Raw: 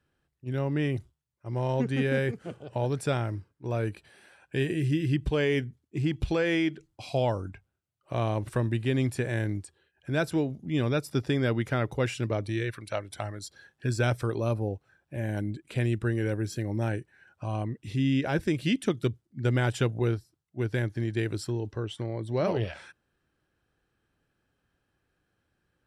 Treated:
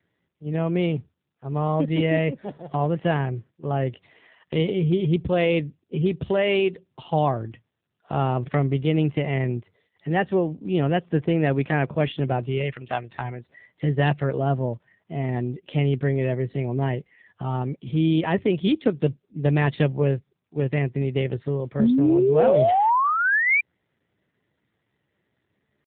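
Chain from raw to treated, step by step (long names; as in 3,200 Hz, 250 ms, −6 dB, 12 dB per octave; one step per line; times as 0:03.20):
pitch shifter +3 semitones
sound drawn into the spectrogram rise, 0:21.79–0:23.61, 210–2,400 Hz −23 dBFS
level +5.5 dB
AMR narrowband 7.4 kbit/s 8,000 Hz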